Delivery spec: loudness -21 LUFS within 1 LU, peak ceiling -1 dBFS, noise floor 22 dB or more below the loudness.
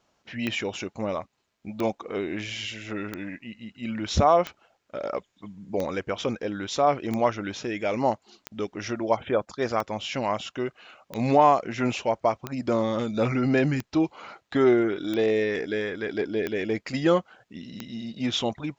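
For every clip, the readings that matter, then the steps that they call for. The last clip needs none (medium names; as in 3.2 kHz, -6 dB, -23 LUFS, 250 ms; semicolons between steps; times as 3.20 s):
clicks found 14; loudness -26.5 LUFS; peak level -7.0 dBFS; loudness target -21.0 LUFS
-> de-click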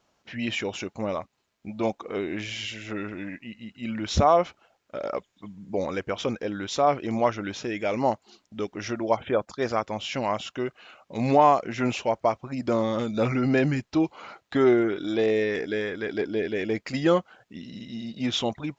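clicks found 0; loudness -26.5 LUFS; peak level -7.0 dBFS; loudness target -21.0 LUFS
-> trim +5.5 dB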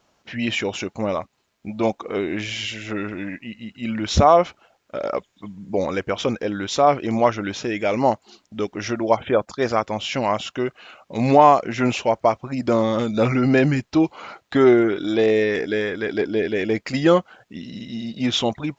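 loudness -21.0 LUFS; peak level -1.5 dBFS; noise floor -68 dBFS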